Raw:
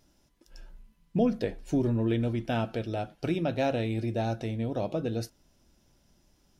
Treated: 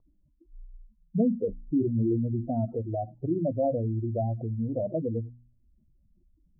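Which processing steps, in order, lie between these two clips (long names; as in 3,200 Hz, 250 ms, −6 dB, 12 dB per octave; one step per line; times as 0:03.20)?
expanding power law on the bin magnitudes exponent 2.9
Butterworth low-pass 1,200 Hz 72 dB per octave
hum removal 60.33 Hz, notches 5
level +2 dB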